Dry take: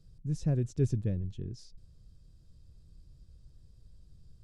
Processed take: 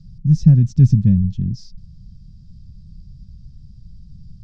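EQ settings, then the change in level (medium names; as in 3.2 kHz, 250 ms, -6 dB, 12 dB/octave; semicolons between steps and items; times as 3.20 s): resonant low-pass 5.4 kHz, resonance Q 2.9; resonant low shelf 280 Hz +12 dB, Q 3; +2.5 dB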